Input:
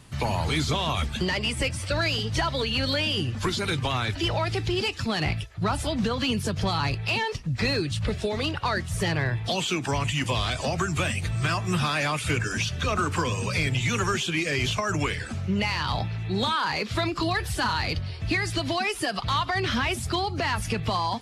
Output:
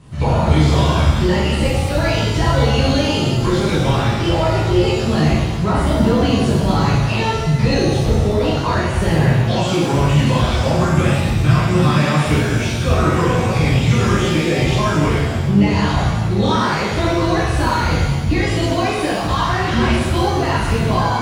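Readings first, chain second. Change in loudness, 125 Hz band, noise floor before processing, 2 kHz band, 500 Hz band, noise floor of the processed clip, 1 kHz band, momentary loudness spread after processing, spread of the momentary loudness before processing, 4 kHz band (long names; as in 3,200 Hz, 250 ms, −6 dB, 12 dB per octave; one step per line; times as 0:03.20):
+10.0 dB, +13.0 dB, −34 dBFS, +5.0 dB, +11.5 dB, −20 dBFS, +8.5 dB, 3 LU, 3 LU, +3.5 dB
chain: linear-phase brick-wall low-pass 11,000 Hz
tilt shelving filter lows +6 dB, about 900 Hz
reverb with rising layers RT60 1.2 s, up +7 semitones, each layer −8 dB, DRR −8 dB
level −1 dB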